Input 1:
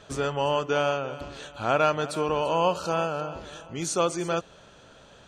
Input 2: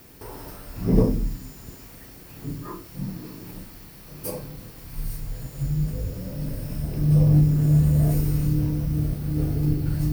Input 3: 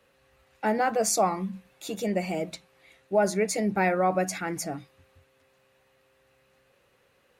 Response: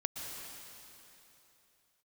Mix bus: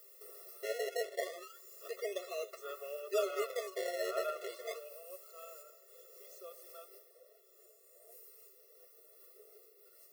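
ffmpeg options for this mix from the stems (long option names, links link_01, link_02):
-filter_complex "[0:a]acrossover=split=430[link_01][link_02];[link_01]aeval=exprs='val(0)*(1-0.5/2+0.5/2*cos(2*PI*1.5*n/s))':channel_layout=same[link_03];[link_02]aeval=exprs='val(0)*(1-0.5/2-0.5/2*cos(2*PI*1.5*n/s))':channel_layout=same[link_04];[link_03][link_04]amix=inputs=2:normalize=0,adelay=2450,volume=-10dB,afade=type=out:start_time=4.3:duration=0.65:silence=0.334965,asplit=2[link_05][link_06];[link_06]volume=-20dB[link_07];[1:a]highshelf=frequency=5300:gain=11.5,acompressor=threshold=-29dB:ratio=12,volume=-9.5dB[link_08];[2:a]lowpass=frequency=9200:width=0.5412,lowpass=frequency=9200:width=1.3066,acrossover=split=480|1400[link_09][link_10][link_11];[link_09]acompressor=threshold=-29dB:ratio=4[link_12];[link_10]acompressor=threshold=-33dB:ratio=4[link_13];[link_11]acompressor=threshold=-39dB:ratio=4[link_14];[link_12][link_13][link_14]amix=inputs=3:normalize=0,acrusher=samples=25:mix=1:aa=0.000001:lfo=1:lforange=25:lforate=0.3,volume=-1.5dB,asplit=2[link_15][link_16];[link_16]apad=whole_len=446367[link_17];[link_08][link_17]sidechaincompress=threshold=-36dB:ratio=8:attack=16:release=445[link_18];[link_07]aecho=0:1:114|228|342|456|570|684|798:1|0.47|0.221|0.104|0.0488|0.0229|0.0108[link_19];[link_05][link_18][link_15][link_19]amix=inputs=4:normalize=0,flanger=delay=4.6:depth=6.2:regen=53:speed=0.95:shape=sinusoidal,afftfilt=real='re*eq(mod(floor(b*sr/1024/360),2),1)':imag='im*eq(mod(floor(b*sr/1024/360),2),1)':win_size=1024:overlap=0.75"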